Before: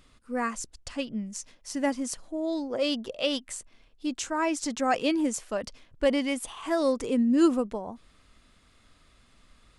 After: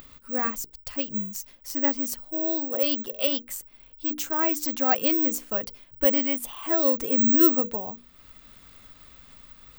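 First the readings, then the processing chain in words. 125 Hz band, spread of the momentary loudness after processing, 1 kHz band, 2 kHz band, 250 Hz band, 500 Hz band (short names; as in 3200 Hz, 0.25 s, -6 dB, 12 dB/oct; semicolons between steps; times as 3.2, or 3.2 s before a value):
n/a, 14 LU, 0.0 dB, 0.0 dB, -0.5 dB, 0.0 dB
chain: careless resampling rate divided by 2×, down filtered, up zero stuff; upward compressor, threshold -39 dBFS; notches 60/120/180/240/300/360/420/480 Hz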